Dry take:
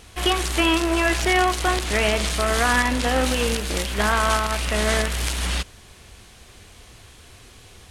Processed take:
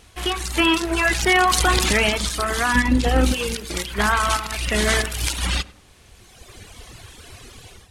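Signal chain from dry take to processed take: dynamic bell 590 Hz, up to -7 dB, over -41 dBFS, Q 3.2; reverb removal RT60 2 s; 2.75–3.34 s: bass shelf 420 Hz +11.5 dB; level rider gain up to 12 dB; tape echo 98 ms, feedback 56%, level -16 dB, low-pass 1.2 kHz; 1.35–1.93 s: level flattener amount 70%; trim -3.5 dB

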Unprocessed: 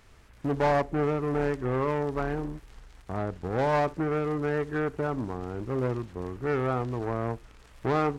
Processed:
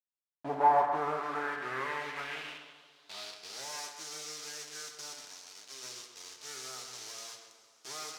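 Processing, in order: 5.13–5.83 s: bass shelf 390 Hz -8.5 dB; bit crusher 6-bit; tape echo 132 ms, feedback 53%, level -6 dB, low-pass 3.3 kHz; two-slope reverb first 0.36 s, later 4.5 s, from -20 dB, DRR 4.5 dB; band-pass sweep 770 Hz -> 5.8 kHz, 0.52–3.73 s; trim +2.5 dB

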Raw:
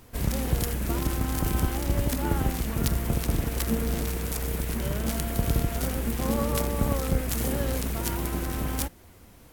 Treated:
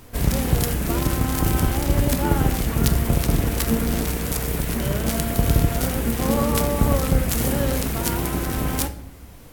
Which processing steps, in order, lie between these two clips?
simulated room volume 160 m³, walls mixed, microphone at 0.31 m; trim +6 dB

